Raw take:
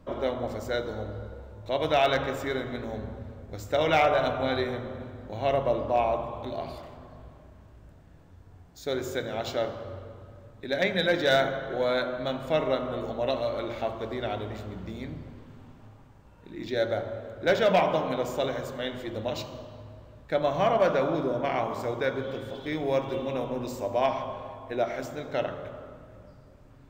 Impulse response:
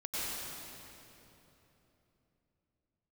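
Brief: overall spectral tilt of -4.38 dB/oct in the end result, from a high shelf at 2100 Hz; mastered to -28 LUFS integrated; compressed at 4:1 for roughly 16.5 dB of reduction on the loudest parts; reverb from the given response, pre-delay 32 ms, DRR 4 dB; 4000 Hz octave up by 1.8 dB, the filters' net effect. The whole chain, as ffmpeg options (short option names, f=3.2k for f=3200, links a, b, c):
-filter_complex "[0:a]highshelf=f=2.1k:g=-4,equalizer=f=4k:t=o:g=5.5,acompressor=threshold=-39dB:ratio=4,asplit=2[a][b];[1:a]atrim=start_sample=2205,adelay=32[c];[b][c]afir=irnorm=-1:irlink=0,volume=-9dB[d];[a][d]amix=inputs=2:normalize=0,volume=12dB"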